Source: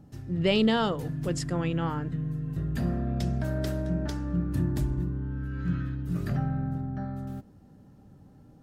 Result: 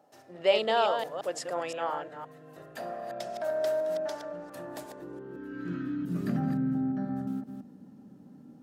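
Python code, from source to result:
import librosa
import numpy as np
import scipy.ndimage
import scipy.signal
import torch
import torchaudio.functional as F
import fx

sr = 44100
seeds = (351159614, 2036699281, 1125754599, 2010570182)

y = fx.reverse_delay(x, sr, ms=173, wet_db=-6.5)
y = fx.filter_sweep_highpass(y, sr, from_hz=630.0, to_hz=220.0, start_s=4.77, end_s=6.25, q=3.0)
y = F.gain(torch.from_numpy(y), -2.5).numpy()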